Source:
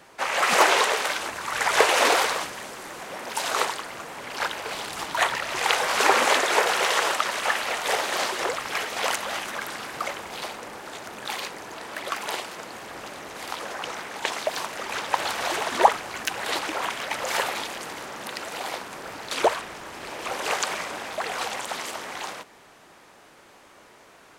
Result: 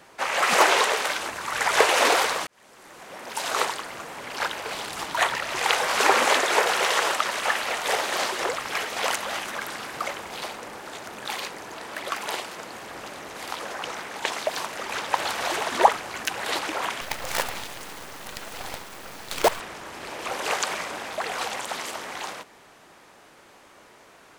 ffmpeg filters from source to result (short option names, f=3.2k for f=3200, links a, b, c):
-filter_complex "[0:a]asettb=1/sr,asplit=3[a][b][c];[a]atrim=end=17.014[d];[b]atrim=start=17.01:end=19.6,asetpts=PTS-STARTPTS,afade=t=in:d=0.004:c=qsin,afade=t=out:st=2.586:d=0.004:c=qsin,acrusher=bits=4:dc=4:mix=0:aa=0.000001[e];[c]atrim=start=19.596[f];[d][e]acrossfade=d=0.004:c1=hsin:c2=qsin[g];[g][f]acrossfade=d=0.004:c1=qsin:c2=hsin,asplit=2[h][i];[h]atrim=end=2.47,asetpts=PTS-STARTPTS,afade=t=out:st=2.466:d=0.004:c=hsin[j];[i]atrim=start=2.47,asetpts=PTS-STARTPTS,afade=t=in:d=1.14[k];[j][k]concat=n=2:v=0:a=1"